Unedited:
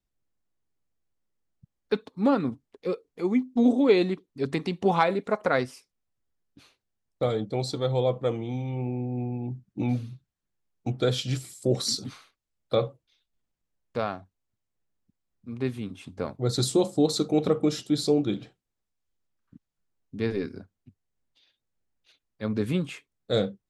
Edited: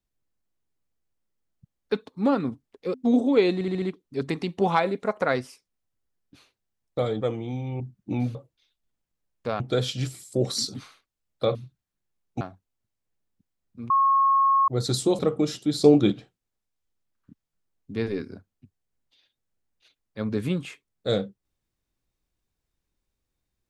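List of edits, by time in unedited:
2.94–3.46 cut
4.06 stutter 0.07 s, 5 plays
7.45–8.22 cut
8.81–9.49 cut
10.04–10.9 swap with 12.85–14.1
15.59–16.37 bleep 1090 Hz -16.5 dBFS
16.88–17.43 cut
18.08–18.36 gain +7 dB

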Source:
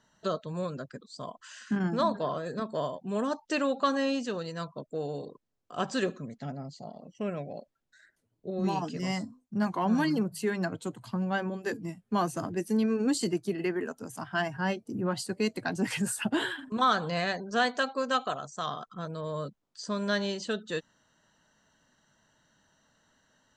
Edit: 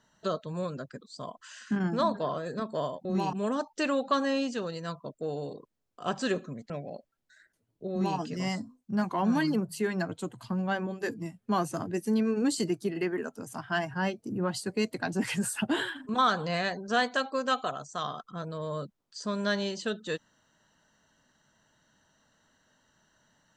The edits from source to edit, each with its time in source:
6.42–7.33 cut
8.54–8.82 copy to 3.05

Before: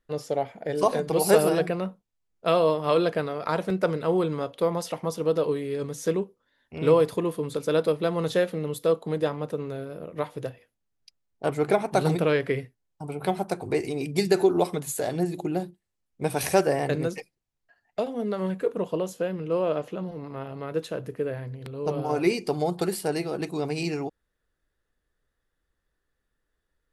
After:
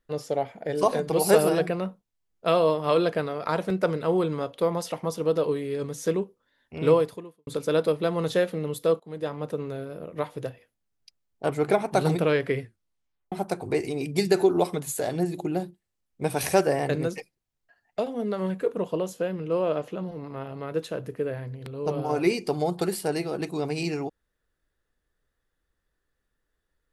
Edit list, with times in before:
6.93–7.47 fade out quadratic
9–9.48 fade in, from -20 dB
12.62 tape stop 0.70 s

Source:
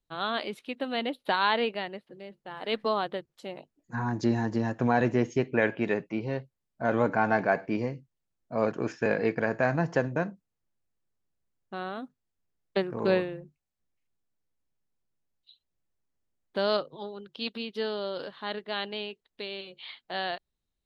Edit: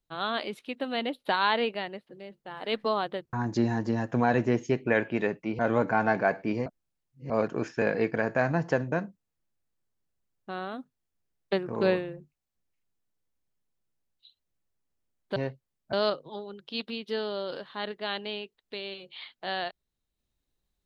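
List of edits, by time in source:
3.33–4 cut
6.26–6.83 move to 16.6
7.9–8.54 reverse

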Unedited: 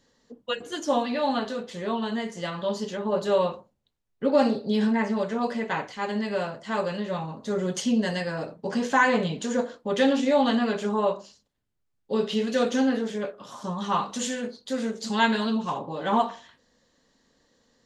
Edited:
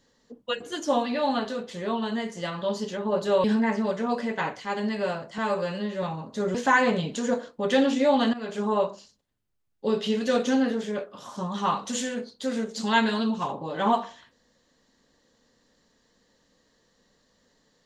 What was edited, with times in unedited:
3.44–4.76 cut
6.7–7.13 stretch 1.5×
7.65–8.81 cut
10.6–10.93 fade in, from -17 dB

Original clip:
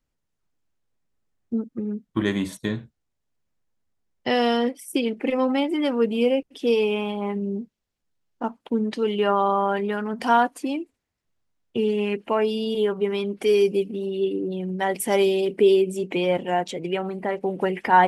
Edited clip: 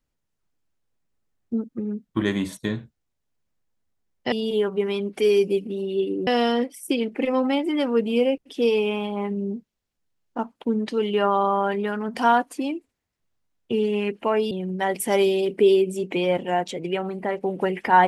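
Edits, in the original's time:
12.56–14.51 move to 4.32

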